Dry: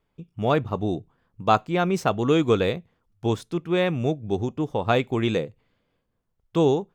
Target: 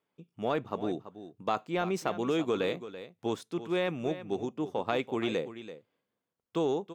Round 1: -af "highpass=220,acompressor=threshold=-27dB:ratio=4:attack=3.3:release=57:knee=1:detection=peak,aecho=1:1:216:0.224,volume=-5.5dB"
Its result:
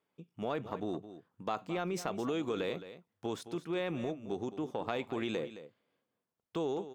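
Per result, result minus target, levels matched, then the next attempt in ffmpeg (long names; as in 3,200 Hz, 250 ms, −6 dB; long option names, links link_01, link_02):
echo 118 ms early; downward compressor: peak gain reduction +5.5 dB
-af "highpass=220,acompressor=threshold=-27dB:ratio=4:attack=3.3:release=57:knee=1:detection=peak,aecho=1:1:334:0.224,volume=-5.5dB"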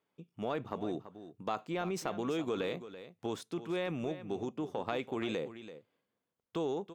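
downward compressor: peak gain reduction +5.5 dB
-af "highpass=220,acompressor=threshold=-19.5dB:ratio=4:attack=3.3:release=57:knee=1:detection=peak,aecho=1:1:334:0.224,volume=-5.5dB"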